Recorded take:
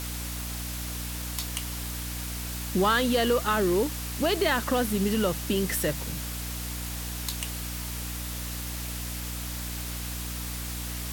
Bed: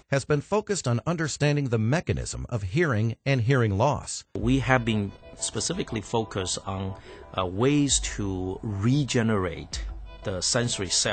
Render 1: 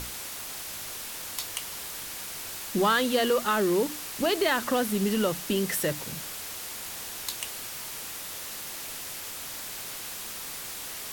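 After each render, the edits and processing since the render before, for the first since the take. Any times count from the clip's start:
mains-hum notches 60/120/180/240/300 Hz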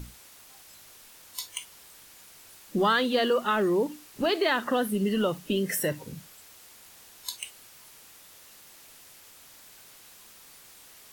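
noise reduction from a noise print 14 dB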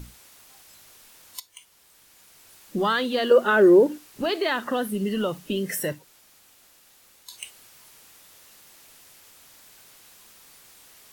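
0:01.40–0:02.65: fade in, from −14.5 dB
0:03.31–0:03.98: hollow resonant body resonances 370/530/1,500 Hz, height 11 dB, ringing for 20 ms
0:05.98–0:07.31: fill with room tone, crossfade 0.16 s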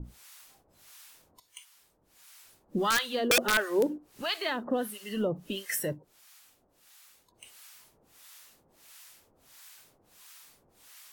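two-band tremolo in antiphase 1.5 Hz, depth 100%, crossover 800 Hz
wrap-around overflow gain 16.5 dB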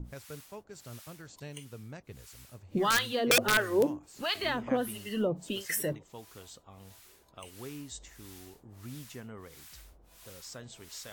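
mix in bed −21.5 dB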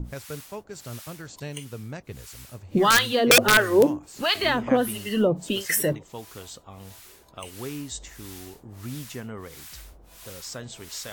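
level +8.5 dB

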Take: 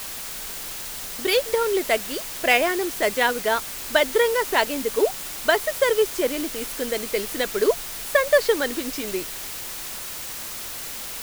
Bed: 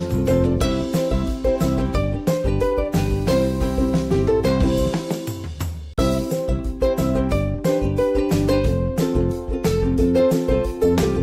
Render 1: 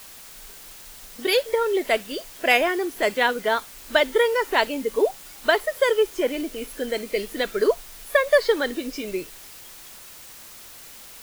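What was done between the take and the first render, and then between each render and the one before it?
noise reduction from a noise print 10 dB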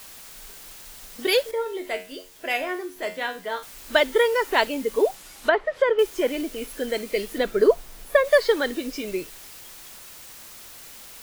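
0:01.51–0:03.63: tuned comb filter 91 Hz, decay 0.33 s, mix 80%
0:05.15–0:05.99: treble cut that deepens with the level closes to 1,900 Hz, closed at −18.5 dBFS
0:07.38–0:08.25: tilt shelving filter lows +4.5 dB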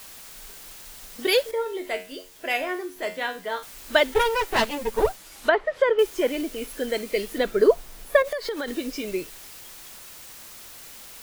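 0:04.14–0:05.32: lower of the sound and its delayed copy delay 9.3 ms
0:08.22–0:08.68: downward compressor 8 to 1, threshold −25 dBFS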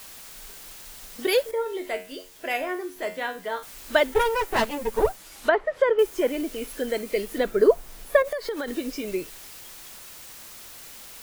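dynamic equaliser 3,800 Hz, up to −5 dB, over −40 dBFS, Q 0.72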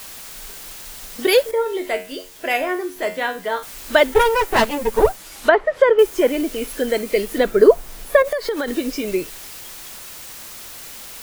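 level +7 dB
brickwall limiter −1 dBFS, peak gain reduction 3 dB

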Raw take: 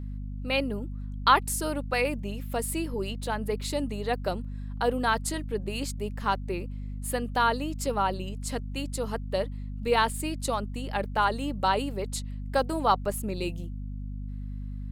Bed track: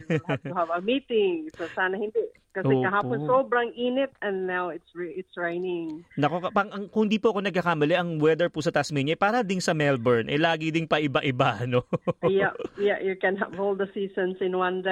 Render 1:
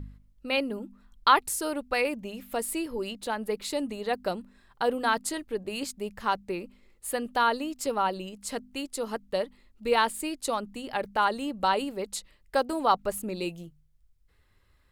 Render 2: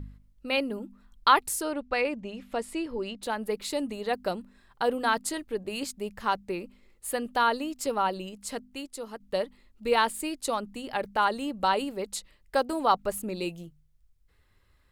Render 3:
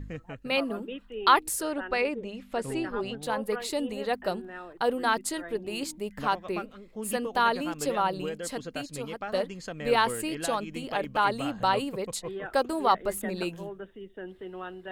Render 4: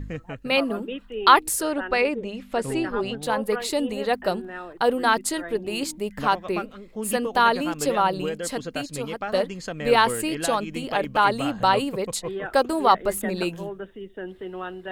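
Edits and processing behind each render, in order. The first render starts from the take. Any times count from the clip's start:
hum removal 50 Hz, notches 5
0:01.62–0:03.23: high-frequency loss of the air 83 metres; 0:08.32–0:09.20: fade out, to −8.5 dB
mix in bed track −14 dB
level +5.5 dB

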